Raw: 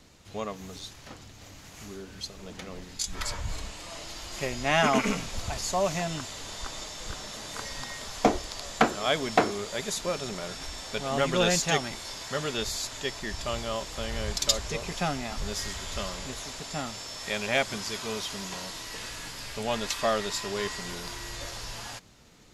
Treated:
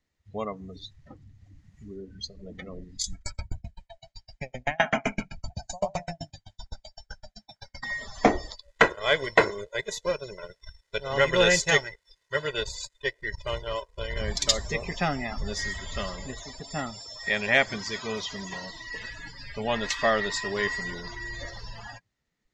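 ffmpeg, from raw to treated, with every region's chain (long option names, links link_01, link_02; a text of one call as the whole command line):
ffmpeg -i in.wav -filter_complex "[0:a]asettb=1/sr,asplit=3[link_01][link_02][link_03];[link_01]atrim=end=3.134[link_04];[link_02]atrim=start=3.13:end=7.83,asetpts=PTS-STARTPTS,afade=type=in:duration=0.004:curve=qsin,afade=type=out:start_time=4.696:duration=0.004:curve=qsin,aecho=1:1:1.3:0.56,atrim=end_sample=207270,aecho=1:1:90|180|270|360:0.708|0.219|0.068|0.0211,atrim=end_sample=207270,aeval=exprs='val(0)*pow(10,-36*if(lt(mod(7.8*n/s,1),2*abs(7.8)/1000),1-mod(7.8*n/s,1)/(2*abs(7.8)/1000),(mod(7.8*n/s,1)-2*abs(7.8)/1000)/(1-2*abs(7.8)/1000))/20)':channel_layout=same[link_05];[link_03]atrim=start=7.826[link_06];[link_04][link_05]acrossfade=duration=0.004:curve1=hsin:curve2=qsin[link_07];[link_07][link_06]acrossfade=duration=0.004:curve1=qsin:curve2=hsin,asettb=1/sr,asplit=3[link_08][link_09][link_10];[link_08]atrim=end=8.554[link_11];[link_09]atrim=start=8.55:end=14.21,asetpts=PTS-STARTPTS,afade=type=in:duration=0.004:curve=qsin,afade=type=out:start_time=5.656:duration=0.004:curve=qsin,aeval=exprs='sgn(val(0))*max(abs(val(0))-0.0141,0)':channel_layout=same,aecho=1:1:2:0.7,atrim=end_sample=249606[link_12];[link_10]atrim=start=14.206[link_13];[link_11][link_12]acrossfade=duration=0.004:curve1=hsin:curve2=qsin[link_14];[link_14][link_13]acrossfade=duration=0.004:curve1=qsin:curve2=hsin,afftdn=noise_reduction=28:noise_floor=-38,lowpass=8500,equalizer=frequency=1900:width=5.2:gain=11,volume=2dB" out.wav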